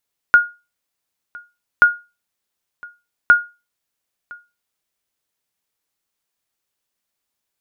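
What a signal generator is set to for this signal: sonar ping 1.43 kHz, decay 0.27 s, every 1.48 s, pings 3, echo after 1.01 s, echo -25.5 dB -2 dBFS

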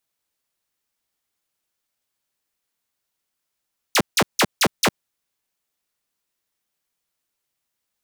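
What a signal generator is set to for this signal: burst of laser zaps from 7.3 kHz, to 110 Hz, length 0.06 s saw, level -11 dB, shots 5, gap 0.16 s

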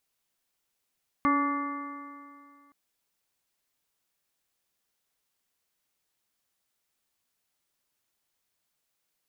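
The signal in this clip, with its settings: stretched partials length 1.47 s, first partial 282 Hz, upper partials -13/-11/2/-17/-14/-9 dB, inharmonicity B 0.0023, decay 2.30 s, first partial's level -24 dB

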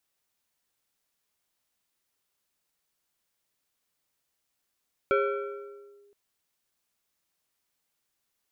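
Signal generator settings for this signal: FM tone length 1.02 s, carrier 406 Hz, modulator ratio 2.34, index 1.3, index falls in 0.99 s linear, decay 1.54 s, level -19 dB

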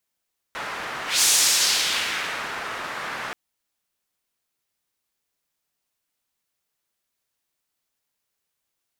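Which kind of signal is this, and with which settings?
whoosh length 2.78 s, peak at 0.68 s, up 0.19 s, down 1.46 s, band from 1.4 kHz, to 6.9 kHz, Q 1.2, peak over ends 14.5 dB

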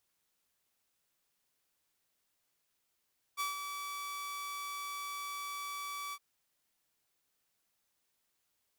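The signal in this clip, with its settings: ADSR saw 1.15 kHz, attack 33 ms, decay 144 ms, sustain -7 dB, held 2.76 s, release 53 ms -29.5 dBFS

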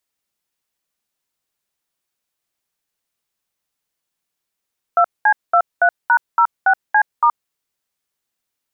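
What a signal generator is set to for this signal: DTMF "2C23#06C*", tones 74 ms, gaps 208 ms, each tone -12 dBFS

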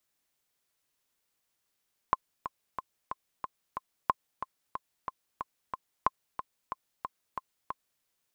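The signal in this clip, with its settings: metronome 183 bpm, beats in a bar 6, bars 3, 1.05 kHz, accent 11 dB -10 dBFS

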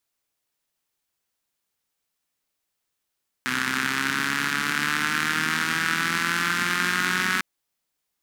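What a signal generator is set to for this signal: four-cylinder engine model, changing speed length 3.95 s, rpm 3800, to 5600, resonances 240/1500 Hz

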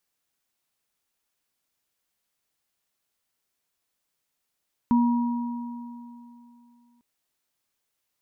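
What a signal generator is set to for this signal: sine partials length 2.10 s, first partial 239 Hz, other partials 956 Hz, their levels -9.5 dB, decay 2.82 s, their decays 2.76 s, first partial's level -16 dB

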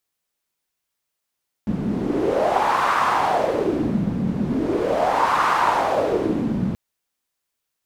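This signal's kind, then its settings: wind-like swept noise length 5.08 s, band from 190 Hz, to 1.1 kHz, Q 4, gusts 2, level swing 4 dB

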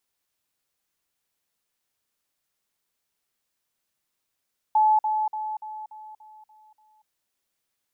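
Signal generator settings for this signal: level ladder 861 Hz -15.5 dBFS, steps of -6 dB, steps 8, 0.24 s 0.05 s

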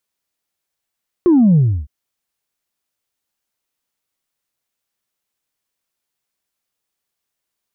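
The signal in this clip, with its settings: sub drop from 370 Hz, over 0.61 s, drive 0 dB, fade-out 0.31 s, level -8 dB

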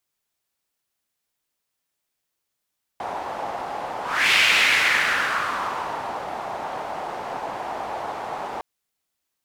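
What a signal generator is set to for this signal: whoosh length 5.61 s, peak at 1.33 s, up 0.35 s, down 2.00 s, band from 800 Hz, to 2.5 kHz, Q 2.9, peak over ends 13.5 dB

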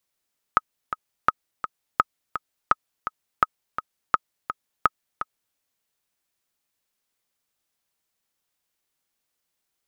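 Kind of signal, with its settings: metronome 168 bpm, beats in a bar 2, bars 7, 1.27 kHz, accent 10.5 dB -3 dBFS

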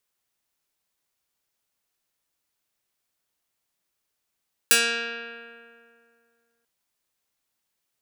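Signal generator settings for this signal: plucked string A#3, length 1.94 s, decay 2.35 s, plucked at 0.22, medium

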